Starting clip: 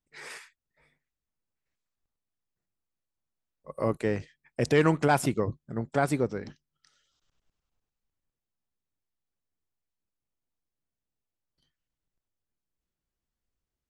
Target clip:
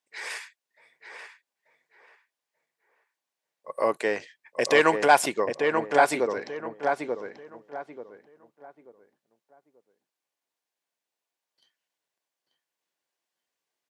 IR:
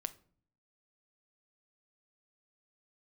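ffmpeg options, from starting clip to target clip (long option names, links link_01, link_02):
-filter_complex "[0:a]highpass=590,highshelf=frequency=9800:gain=-6.5,bandreject=frequency=1300:width=7.9,asplit=2[link_01][link_02];[link_02]adelay=886,lowpass=frequency=1700:poles=1,volume=-4dB,asplit=2[link_03][link_04];[link_04]adelay=886,lowpass=frequency=1700:poles=1,volume=0.3,asplit=2[link_05][link_06];[link_06]adelay=886,lowpass=frequency=1700:poles=1,volume=0.3,asplit=2[link_07][link_08];[link_08]adelay=886,lowpass=frequency=1700:poles=1,volume=0.3[link_09];[link_01][link_03][link_05][link_07][link_09]amix=inputs=5:normalize=0,volume=8.5dB"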